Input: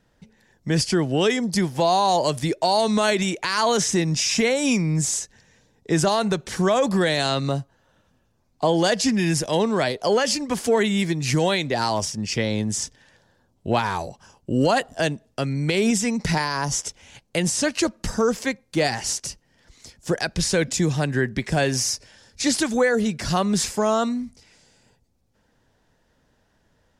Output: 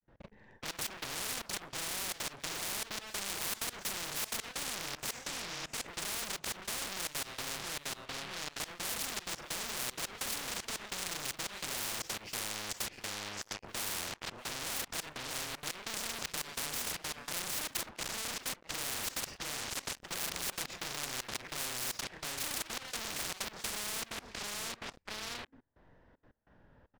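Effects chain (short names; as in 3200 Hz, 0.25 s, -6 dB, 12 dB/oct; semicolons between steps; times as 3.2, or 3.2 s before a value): short-time reversal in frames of 94 ms; in parallel at -7.5 dB: bit-crush 7-bit; on the sum: LPF 1900 Hz 12 dB/oct; feedback echo 0.654 s, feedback 25%, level -17 dB; limiter -15.5 dBFS, peak gain reduction 7.5 dB; on a send at -24 dB: reverb RT60 0.50 s, pre-delay 3 ms; on the sum: vibrato 0.36 Hz 57 cents; sample leveller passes 5; compressor 4:1, threshold -30 dBFS, peak gain reduction 11 dB; step gate ".x..xxxxx" 191 bpm -24 dB; spectral compressor 10:1; gain +2.5 dB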